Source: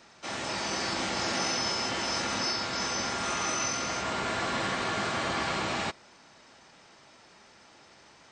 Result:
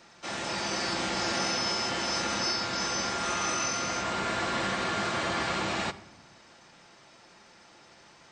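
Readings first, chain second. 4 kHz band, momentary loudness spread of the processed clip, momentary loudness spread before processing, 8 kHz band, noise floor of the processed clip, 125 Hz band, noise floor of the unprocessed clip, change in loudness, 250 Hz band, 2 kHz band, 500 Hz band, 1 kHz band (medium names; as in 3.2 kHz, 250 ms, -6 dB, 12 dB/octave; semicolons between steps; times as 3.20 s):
+0.5 dB, 4 LU, 4 LU, 0.0 dB, -56 dBFS, +0.5 dB, -57 dBFS, +0.5 dB, +1.0 dB, +0.5 dB, +0.5 dB, +0.5 dB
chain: simulated room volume 3400 m³, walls furnished, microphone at 0.85 m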